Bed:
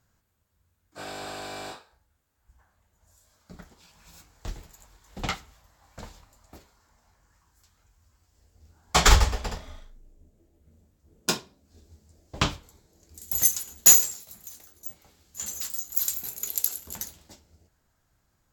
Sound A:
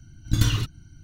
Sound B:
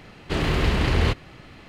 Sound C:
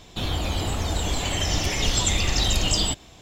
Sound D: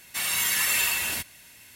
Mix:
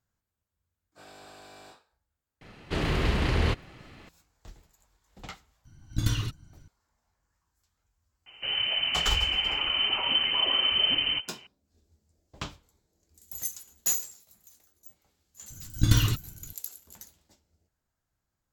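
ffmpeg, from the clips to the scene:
ffmpeg -i bed.wav -i cue0.wav -i cue1.wav -i cue2.wav -filter_complex "[1:a]asplit=2[link_01][link_02];[0:a]volume=-12.5dB[link_03];[3:a]lowpass=frequency=2600:width_type=q:width=0.5098,lowpass=frequency=2600:width_type=q:width=0.6013,lowpass=frequency=2600:width_type=q:width=0.9,lowpass=frequency=2600:width_type=q:width=2.563,afreqshift=-3100[link_04];[2:a]atrim=end=1.68,asetpts=PTS-STARTPTS,volume=-4.5dB,afade=type=in:duration=0.004:curve=hsin,afade=type=out:start_time=1.676:duration=0.004:curve=hsin,adelay=2410[link_05];[link_01]atrim=end=1.03,asetpts=PTS-STARTPTS,volume=-6dB,afade=type=in:duration=0.004:curve=hsin,afade=type=out:start_time=1.026:duration=0.004:curve=hsin,adelay=249165S[link_06];[link_04]atrim=end=3.21,asetpts=PTS-STARTPTS,volume=-2.5dB,afade=type=in:duration=0.004:curve=hsin,afade=type=out:start_time=3.206:duration=0.004:curve=hsin,adelay=364266S[link_07];[link_02]atrim=end=1.03,asetpts=PTS-STARTPTS,volume=-0.5dB,afade=type=in:duration=0.004:curve=hsin,afade=type=out:start_time=1.026:duration=0.004:curve=hsin,adelay=15500[link_08];[link_03][link_05][link_06][link_07][link_08]amix=inputs=5:normalize=0" out.wav

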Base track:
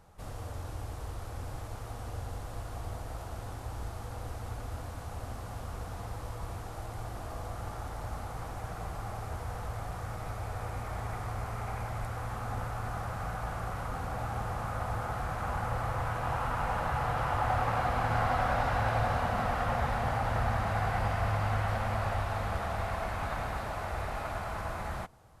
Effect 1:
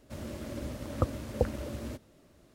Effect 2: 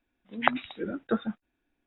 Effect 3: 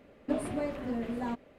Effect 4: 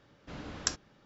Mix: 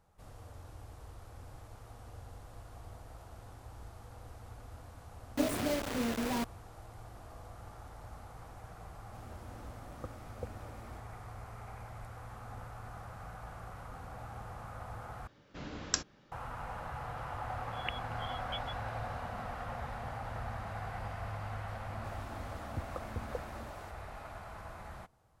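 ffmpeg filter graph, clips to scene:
ffmpeg -i bed.wav -i cue0.wav -i cue1.wav -i cue2.wav -i cue3.wav -filter_complex "[1:a]asplit=2[link_01][link_02];[0:a]volume=-10.5dB[link_03];[3:a]acrusher=bits=5:mix=0:aa=0.000001[link_04];[2:a]lowpass=frequency=3100:width_type=q:width=0.5098,lowpass=frequency=3100:width_type=q:width=0.6013,lowpass=frequency=3100:width_type=q:width=0.9,lowpass=frequency=3100:width_type=q:width=2.563,afreqshift=-3600[link_05];[link_02]acrossover=split=350[link_06][link_07];[link_07]adelay=190[link_08];[link_06][link_08]amix=inputs=2:normalize=0[link_09];[link_03]asplit=2[link_10][link_11];[link_10]atrim=end=15.274[link_12];[4:a]atrim=end=1.05,asetpts=PTS-STARTPTS,volume=-0.5dB[link_13];[link_11]atrim=start=16.316[link_14];[link_04]atrim=end=1.58,asetpts=PTS-STARTPTS,volume=-0.5dB,afade=type=in:duration=0.004:curve=hsin,afade=type=out:start_time=1.576:duration=0.004:curve=hsin,adelay=224469S[link_15];[link_01]atrim=end=2.54,asetpts=PTS-STARTPTS,volume=-15dB,afade=type=in:duration=0.004:curve=hsin,afade=type=out:start_time=2.536:duration=0.004:curve=hsin,adelay=9020[link_16];[link_05]atrim=end=1.86,asetpts=PTS-STARTPTS,volume=-16.5dB,afade=type=in:duration=0.004:curve=hsin,afade=type=out:start_time=1.856:duration=0.004:curve=hsin,adelay=17410[link_17];[link_09]atrim=end=2.54,asetpts=PTS-STARTPTS,volume=-9.5dB,afade=type=in:duration=0.004:curve=hsin,afade=type=out:start_time=2.536:duration=0.004:curve=hsin,adelay=21750[link_18];[link_12][link_13]acrossfade=duration=0.004:curve1=hsin:curve2=hsin[link_19];[link_19][link_14]acrossfade=duration=0.004:curve1=hsin:curve2=hsin[link_20];[link_20][link_15][link_16][link_17][link_18]amix=inputs=5:normalize=0" out.wav

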